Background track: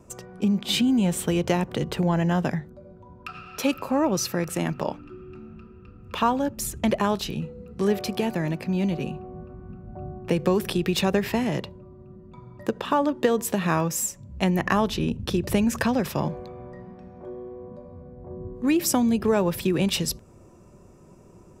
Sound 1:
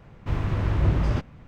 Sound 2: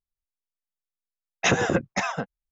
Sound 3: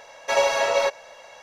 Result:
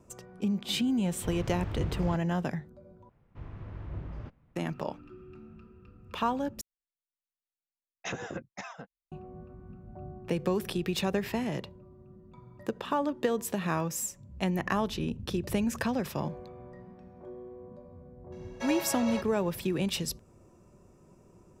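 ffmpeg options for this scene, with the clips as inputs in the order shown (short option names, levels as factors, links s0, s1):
-filter_complex "[1:a]asplit=2[s0][s1];[0:a]volume=0.447[s2];[s1]aemphasis=mode=reproduction:type=75kf[s3];[s2]asplit=3[s4][s5][s6];[s4]atrim=end=3.094[s7];[s3]atrim=end=1.47,asetpts=PTS-STARTPTS,volume=0.133[s8];[s5]atrim=start=4.556:end=6.614[s9];[2:a]atrim=end=2.51,asetpts=PTS-STARTPTS,volume=0.168[s10];[s6]atrim=start=9.116[s11];[s0]atrim=end=1.47,asetpts=PTS-STARTPTS,volume=0.251,afade=t=in:d=0.004:c=hsin,afade=t=out:st=1.466:d=0.004:c=hsin,adelay=960[s12];[3:a]atrim=end=1.42,asetpts=PTS-STARTPTS,volume=0.188,afade=t=in:d=0.004:c=hsin,afade=t=out:st=1.416:d=0.004:c=hsin,adelay=18320[s13];[s7][s8]acrossfade=d=0.004:c1=hsin:c2=hsin[s14];[s14][s9]acrossfade=d=0.004:c1=hsin:c2=hsin[s15];[s15][s10]acrossfade=d=0.004:c1=hsin:c2=hsin[s16];[s16][s11]acrossfade=d=0.004:c1=hsin:c2=hsin[s17];[s17][s12][s13]amix=inputs=3:normalize=0"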